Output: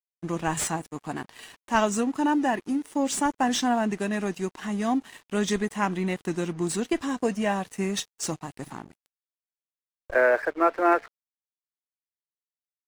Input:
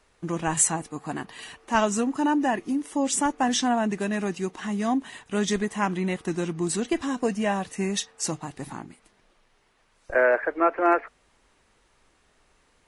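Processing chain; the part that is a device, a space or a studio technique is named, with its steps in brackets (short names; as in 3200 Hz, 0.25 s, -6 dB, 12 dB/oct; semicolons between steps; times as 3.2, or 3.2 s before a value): early transistor amplifier (crossover distortion -46.5 dBFS; slew limiter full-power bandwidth 340 Hz)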